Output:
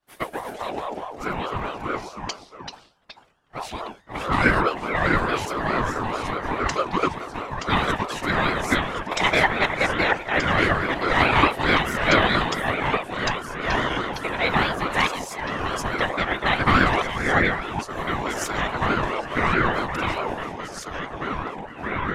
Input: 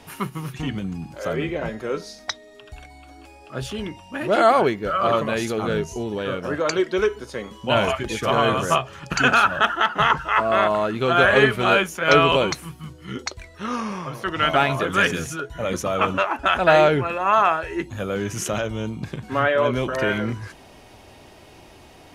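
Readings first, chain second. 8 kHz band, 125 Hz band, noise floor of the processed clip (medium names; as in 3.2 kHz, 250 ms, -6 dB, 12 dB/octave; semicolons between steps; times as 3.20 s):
-2.5 dB, 0.0 dB, -48 dBFS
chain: expander -32 dBFS; whisper effect; ever faster or slower copies 105 ms, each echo -2 st, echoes 2, each echo -6 dB; ring modulator with a swept carrier 690 Hz, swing 30%, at 4.7 Hz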